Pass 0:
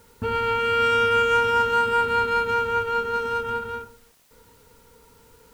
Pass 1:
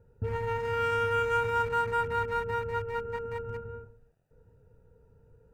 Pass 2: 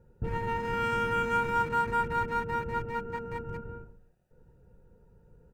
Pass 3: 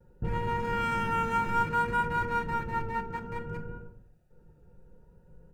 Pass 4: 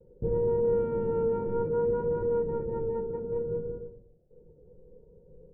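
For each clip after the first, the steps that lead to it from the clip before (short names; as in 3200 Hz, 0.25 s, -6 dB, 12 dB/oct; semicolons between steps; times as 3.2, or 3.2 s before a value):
Wiener smoothing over 41 samples; in parallel at -3 dB: limiter -20.5 dBFS, peak gain reduction 7.5 dB; on the sum: graphic EQ 125/250/4000 Hz +7/-11/-9 dB; gain -6.5 dB
octaver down 1 oct, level -2 dB; comb 5.5 ms, depth 39%
vibrato 0.61 Hz 30 cents; shoebox room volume 620 m³, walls furnished, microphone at 0.96 m
synth low-pass 470 Hz, resonance Q 4.9; gain -2 dB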